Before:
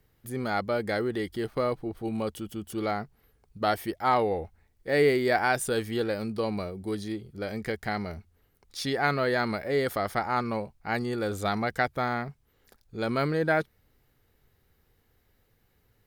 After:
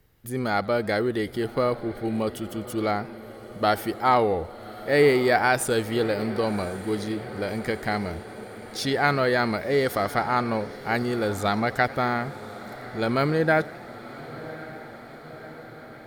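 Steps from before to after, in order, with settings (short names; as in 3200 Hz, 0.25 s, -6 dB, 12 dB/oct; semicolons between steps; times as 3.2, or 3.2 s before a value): diffused feedback echo 1.111 s, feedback 67%, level -16 dB; warbling echo 89 ms, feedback 66%, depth 189 cents, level -22.5 dB; gain +4 dB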